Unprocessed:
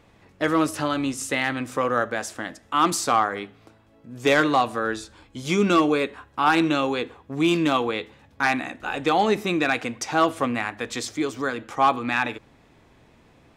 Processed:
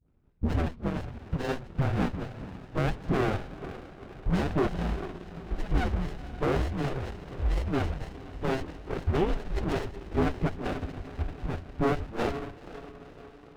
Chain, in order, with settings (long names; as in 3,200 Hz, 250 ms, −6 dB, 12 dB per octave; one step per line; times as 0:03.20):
adaptive Wiener filter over 41 samples
feedback delay with all-pass diffusion 478 ms, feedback 59%, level −14 dB
transient designer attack +3 dB, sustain +8 dB
all-pass dispersion highs, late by 107 ms, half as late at 1,400 Hz
transient designer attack +5 dB, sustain −4 dB
dynamic equaliser 1,100 Hz, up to +4 dB, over −32 dBFS, Q 1.1
brickwall limiter −11 dBFS, peak gain reduction 10 dB
parametric band 350 Hz +8 dB 0.26 octaves
single-sideband voice off tune −390 Hz 420–3,500 Hz
windowed peak hold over 33 samples
level −3 dB